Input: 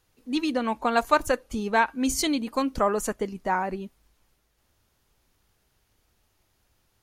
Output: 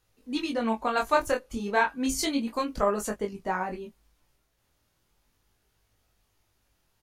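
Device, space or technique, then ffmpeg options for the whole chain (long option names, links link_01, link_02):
double-tracked vocal: -filter_complex "[0:a]asplit=2[link_01][link_02];[link_02]adelay=18,volume=-9dB[link_03];[link_01][link_03]amix=inputs=2:normalize=0,flanger=delay=19.5:depth=5.8:speed=0.33"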